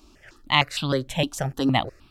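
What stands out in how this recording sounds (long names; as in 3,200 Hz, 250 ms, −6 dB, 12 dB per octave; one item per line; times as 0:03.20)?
notches that jump at a steady rate 6.5 Hz 500–1,900 Hz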